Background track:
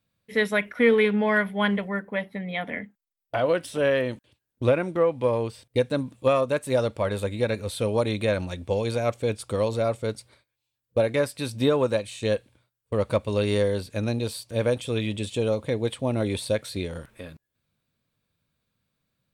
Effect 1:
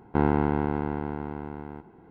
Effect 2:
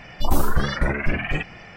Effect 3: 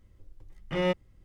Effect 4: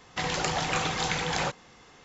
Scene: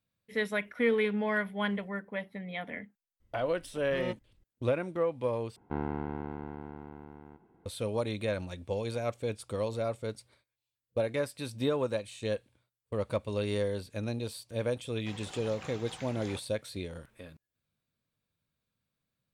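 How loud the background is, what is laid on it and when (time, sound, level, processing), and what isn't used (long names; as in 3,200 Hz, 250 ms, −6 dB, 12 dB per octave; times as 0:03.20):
background track −8 dB
0:03.20: mix in 3 −10 dB
0:05.56: overwrite with 1 −11.5 dB
0:14.89: mix in 4 −18 dB + mu-law and A-law mismatch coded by A
not used: 2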